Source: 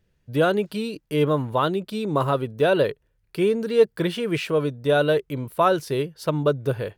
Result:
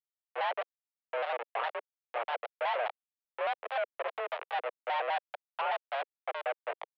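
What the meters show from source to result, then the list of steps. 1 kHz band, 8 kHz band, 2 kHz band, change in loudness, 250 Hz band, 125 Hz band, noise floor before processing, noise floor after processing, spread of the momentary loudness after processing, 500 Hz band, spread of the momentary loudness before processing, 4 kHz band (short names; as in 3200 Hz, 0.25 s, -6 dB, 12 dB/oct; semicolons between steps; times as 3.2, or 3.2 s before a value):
-6.0 dB, n/a, -7.0 dB, -12.5 dB, under -40 dB, under -40 dB, -69 dBFS, under -85 dBFS, 7 LU, -15.5 dB, 7 LU, -11.0 dB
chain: Schmitt trigger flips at -21 dBFS; mistuned SSB +250 Hz 300–2900 Hz; shaped vibrato square 4.9 Hz, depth 160 cents; gain -6.5 dB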